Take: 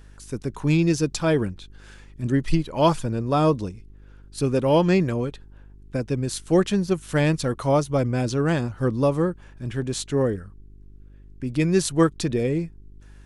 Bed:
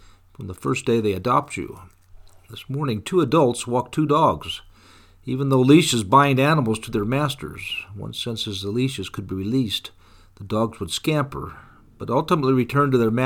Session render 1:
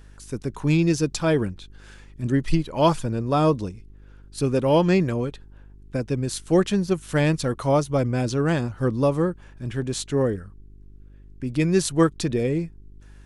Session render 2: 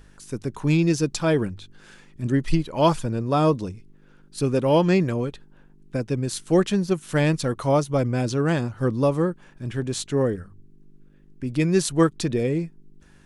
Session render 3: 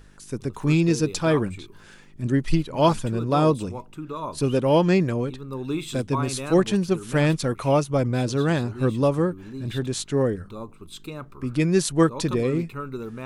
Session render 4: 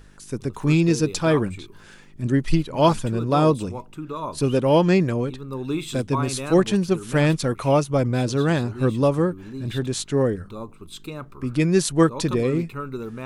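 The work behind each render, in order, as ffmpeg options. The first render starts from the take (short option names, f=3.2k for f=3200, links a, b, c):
-af anull
-af "bandreject=f=50:t=h:w=4,bandreject=f=100:t=h:w=4"
-filter_complex "[1:a]volume=-15dB[a];[0:a][a]amix=inputs=2:normalize=0"
-af "volume=1.5dB"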